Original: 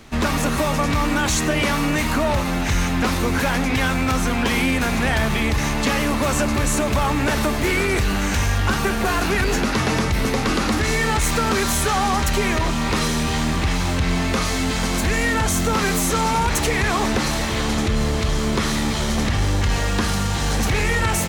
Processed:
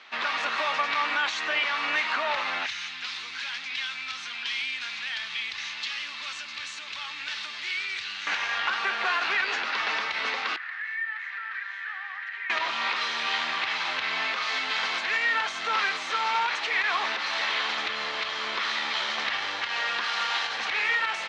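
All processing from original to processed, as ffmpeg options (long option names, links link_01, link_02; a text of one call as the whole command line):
ffmpeg -i in.wav -filter_complex "[0:a]asettb=1/sr,asplit=3[link_01][link_02][link_03];[link_01]atrim=end=2.664[link_04];[link_02]atrim=start=2.66:end=8.27,asetpts=PTS-STARTPTS,afade=type=in:duration=0.004:curve=qsin,afade=type=out:start_time=5.606:duration=0.004:curve=qsin,equalizer=frequency=590:width_type=o:width=1.5:gain=-10.5,acrossover=split=130|3000[link_05][link_06][link_07];[link_06]acompressor=threshold=-37dB:ratio=4:attack=3.2:release=140:knee=2.83:detection=peak[link_08];[link_05][link_08][link_07]amix=inputs=3:normalize=0[link_09];[link_03]atrim=start=8.266[link_10];[link_04][link_09]acrossfade=duration=0.004:curve1=hsin:curve2=qsin[link_11];[link_11][link_10]acrossfade=duration=0.004:curve1=qsin:curve2=hsin,asettb=1/sr,asplit=3[link_12][link_13][link_14];[link_12]atrim=end=10.564[link_15];[link_13]atrim=start=10.56:end=12.5,asetpts=PTS-STARTPTS,afade=type=in:duration=0.004:curve=qsin,afade=type=out:start_time=1.936:duration=0.004:curve=qsin,bandpass=frequency=1800:width_type=q:width=7.5,acompressor=threshold=-33dB:ratio=2:attack=3.2:release=140:knee=1:detection=peak[link_16];[link_14]atrim=start=12.496[link_17];[link_15][link_16]acrossfade=duration=0.004:curve1=hsin:curve2=qsin[link_18];[link_18][link_17]acrossfade=duration=0.004:curve1=qsin:curve2=hsin,asettb=1/sr,asplit=3[link_19][link_20][link_21];[link_19]atrim=end=20.044[link_22];[link_20]atrim=start=20.04:end=20.47,asetpts=PTS-STARTPTS,afade=type=in:duration=0.004:curve=qsin,afade=type=out:start_time=0.426:duration=0.004:curve=qsin,equalizer=frequency=94:width_type=o:width=1.7:gain=-14,acontrast=24,acrusher=bits=4:mode=log:mix=0:aa=0.000001[link_23];[link_21]atrim=start=20.466[link_24];[link_22][link_23]acrossfade=duration=0.004:curve1=hsin:curve2=qsin[link_25];[link_25][link_24]acrossfade=duration=0.004:curve1=qsin:curve2=hsin,highpass=1200,alimiter=limit=-17dB:level=0:latency=1:release=239,lowpass=frequency=4100:width=0.5412,lowpass=frequency=4100:width=1.3066,volume=2dB" out.wav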